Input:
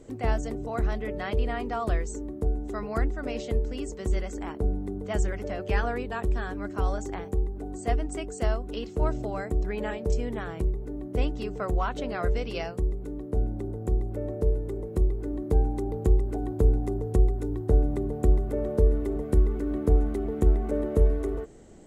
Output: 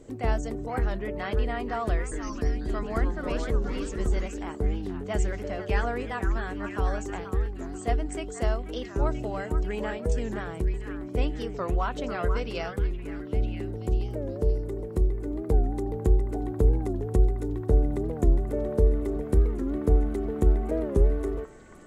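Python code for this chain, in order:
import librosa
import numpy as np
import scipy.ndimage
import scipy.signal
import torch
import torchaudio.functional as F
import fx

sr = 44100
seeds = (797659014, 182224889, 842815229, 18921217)

y = fx.echo_pitch(x, sr, ms=152, semitones=-3, count=3, db_per_echo=-6.0, at=(1.97, 4.28))
y = fx.echo_stepped(y, sr, ms=485, hz=1400.0, octaves=0.7, feedback_pct=70, wet_db=-5.5)
y = fx.record_warp(y, sr, rpm=45.0, depth_cents=160.0)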